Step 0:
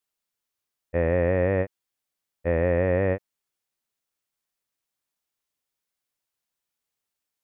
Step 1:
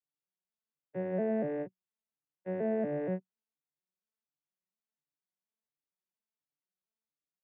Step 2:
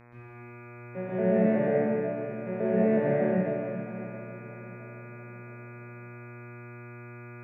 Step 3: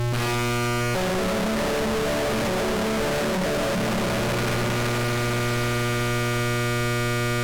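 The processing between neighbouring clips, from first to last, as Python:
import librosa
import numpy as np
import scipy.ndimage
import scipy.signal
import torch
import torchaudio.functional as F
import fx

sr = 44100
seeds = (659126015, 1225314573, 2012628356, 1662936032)

y1 = fx.vocoder_arp(x, sr, chord='major triad', root=50, every_ms=236)
y1 = y1 * librosa.db_to_amplitude(-8.5)
y2 = fx.dmg_buzz(y1, sr, base_hz=120.0, harmonics=21, level_db=-54.0, tilt_db=-4, odd_only=False)
y2 = fx.echo_feedback(y2, sr, ms=666, feedback_pct=46, wet_db=-16)
y2 = fx.rev_plate(y2, sr, seeds[0], rt60_s=2.5, hf_ratio=0.95, predelay_ms=115, drr_db=-9.5)
y3 = np.sign(y2) * np.sqrt(np.mean(np.square(y2)))
y3 = fx.dmg_noise_colour(y3, sr, seeds[1], colour='brown', level_db=-44.0)
y3 = np.interp(np.arange(len(y3)), np.arange(len(y3))[::2], y3[::2])
y3 = y3 * librosa.db_to_amplitude(6.5)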